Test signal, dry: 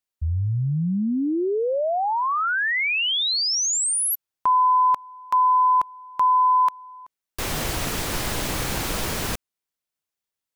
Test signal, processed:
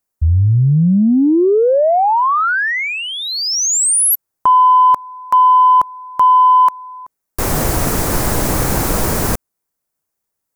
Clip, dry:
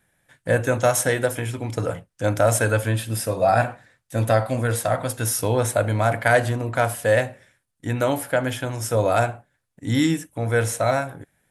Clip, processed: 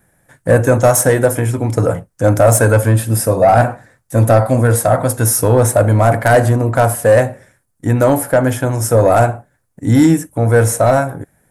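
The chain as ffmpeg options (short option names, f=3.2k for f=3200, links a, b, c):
-af "aeval=exprs='0.631*(cos(1*acos(clip(val(0)/0.631,-1,1)))-cos(1*PI/2))+0.141*(cos(5*acos(clip(val(0)/0.631,-1,1)))-cos(5*PI/2))':c=same,equalizer=f=3.2k:w=0.87:g=-13,volume=5.5dB"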